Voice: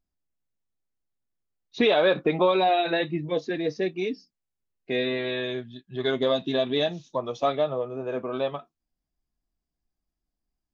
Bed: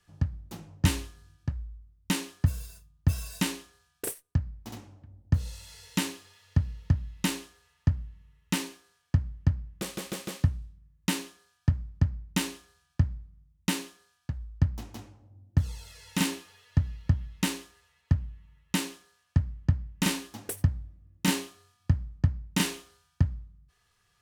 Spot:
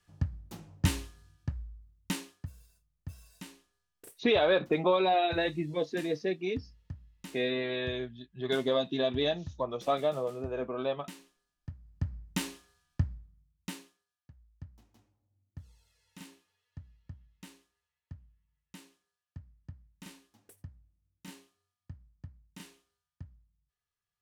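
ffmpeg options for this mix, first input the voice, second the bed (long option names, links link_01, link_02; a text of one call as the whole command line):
ffmpeg -i stem1.wav -i stem2.wav -filter_complex "[0:a]adelay=2450,volume=-4.5dB[link_01];[1:a]volume=10dB,afade=type=out:start_time=1.96:duration=0.51:silence=0.177828,afade=type=in:start_time=11.81:duration=0.4:silence=0.211349,afade=type=out:start_time=13:duration=1.05:silence=0.133352[link_02];[link_01][link_02]amix=inputs=2:normalize=0" out.wav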